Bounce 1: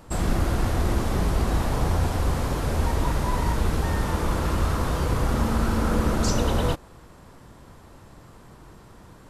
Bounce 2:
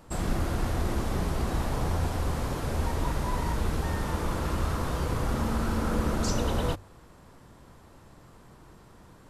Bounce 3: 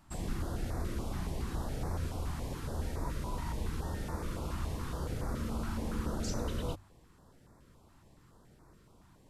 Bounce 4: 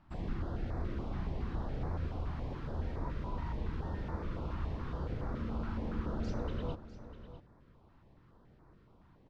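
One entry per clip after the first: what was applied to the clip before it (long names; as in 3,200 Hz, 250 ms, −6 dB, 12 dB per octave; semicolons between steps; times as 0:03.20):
mains-hum notches 50/100 Hz; level −4.5 dB
notch on a step sequencer 7.1 Hz 480–3,000 Hz; level −7.5 dB
high-frequency loss of the air 270 metres; single-tap delay 650 ms −13.5 dB; level −1 dB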